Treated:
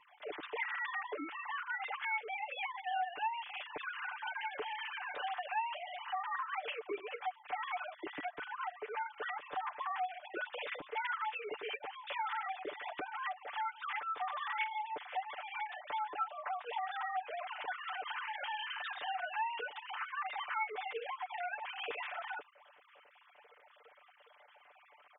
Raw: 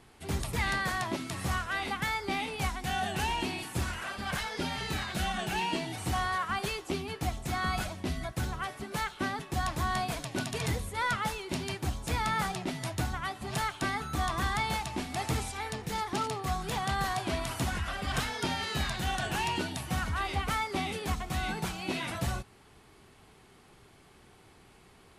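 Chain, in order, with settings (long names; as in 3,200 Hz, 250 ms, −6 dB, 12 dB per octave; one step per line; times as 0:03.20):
three sine waves on the formant tracks
comb filter 6.8 ms, depth 88%
downward compressor 2.5 to 1, threshold −41 dBFS, peak gain reduction 17 dB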